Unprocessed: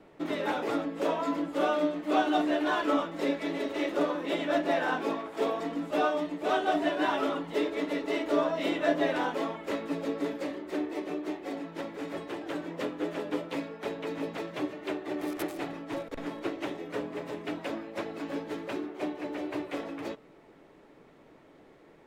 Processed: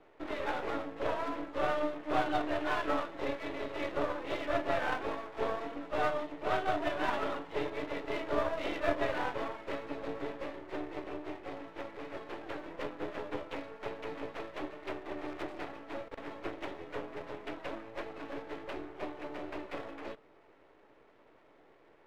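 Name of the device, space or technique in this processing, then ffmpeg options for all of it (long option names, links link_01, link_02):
crystal radio: -af "highpass=380,lowpass=3000,aeval=exprs='if(lt(val(0),0),0.251*val(0),val(0))':channel_layout=same"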